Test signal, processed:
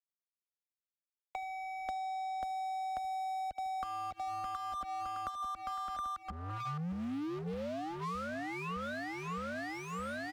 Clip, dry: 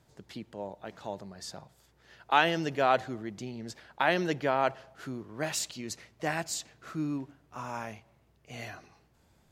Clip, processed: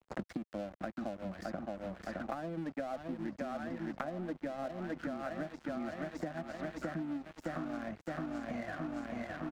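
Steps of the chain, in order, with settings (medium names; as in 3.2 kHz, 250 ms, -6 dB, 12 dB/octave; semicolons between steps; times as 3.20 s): reverb removal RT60 0.62 s; static phaser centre 630 Hz, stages 8; feedback delay 614 ms, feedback 58%, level -8 dB; low-pass that closes with the level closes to 810 Hz, closed at -27.5 dBFS; RIAA curve playback; compression 6:1, threshold -45 dBFS; high-pass 94 Hz 6 dB/octave; treble shelf 7.1 kHz -12 dB; crossover distortion -58.5 dBFS; gate with hold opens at -60 dBFS; three bands compressed up and down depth 100%; trim +10 dB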